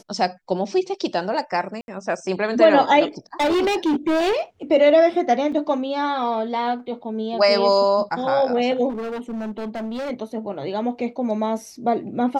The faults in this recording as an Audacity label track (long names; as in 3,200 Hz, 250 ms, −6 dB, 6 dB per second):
1.810000	1.880000	drop-out 71 ms
3.400000	4.410000	clipping −16.5 dBFS
5.520000	5.520000	drop-out 4.3 ms
8.890000	10.110000	clipping −25.5 dBFS